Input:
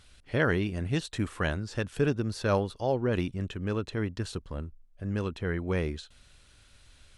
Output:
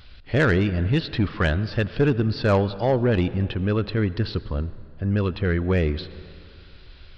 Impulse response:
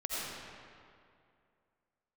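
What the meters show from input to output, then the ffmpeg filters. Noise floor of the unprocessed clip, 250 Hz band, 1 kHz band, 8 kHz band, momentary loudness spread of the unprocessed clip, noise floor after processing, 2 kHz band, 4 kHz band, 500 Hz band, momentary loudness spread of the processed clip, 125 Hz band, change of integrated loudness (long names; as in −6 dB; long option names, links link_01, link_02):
−59 dBFS, +8.0 dB, +6.0 dB, can't be measured, 10 LU, −46 dBFS, +6.5 dB, +7.5 dB, +6.5 dB, 9 LU, +9.5 dB, +7.5 dB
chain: -filter_complex "[0:a]asplit=2[link_01][link_02];[1:a]atrim=start_sample=2205[link_03];[link_02][link_03]afir=irnorm=-1:irlink=0,volume=-21dB[link_04];[link_01][link_04]amix=inputs=2:normalize=0,volume=15dB,asoftclip=hard,volume=-15dB,aresample=11025,aresample=44100,lowshelf=frequency=110:gain=4.5,aeval=exprs='0.224*(cos(1*acos(clip(val(0)/0.224,-1,1)))-cos(1*PI/2))+0.02*(cos(5*acos(clip(val(0)/0.224,-1,1)))-cos(5*PI/2))':channel_layout=same,volume=4.5dB"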